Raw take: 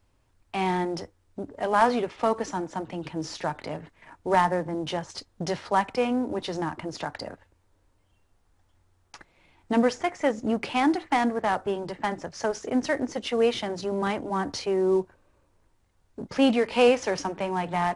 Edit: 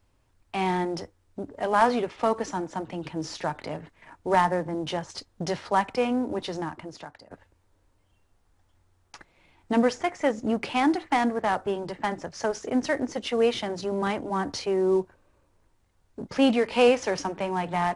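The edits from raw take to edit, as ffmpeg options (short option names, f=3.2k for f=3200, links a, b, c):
-filter_complex "[0:a]asplit=2[a][b];[a]atrim=end=7.31,asetpts=PTS-STARTPTS,afade=t=out:st=6.39:d=0.92:silence=0.0944061[c];[b]atrim=start=7.31,asetpts=PTS-STARTPTS,afade=t=in:d=0.004:c=hsin:silence=0.0944061[d];[c][d]concat=n=2:v=0:a=1"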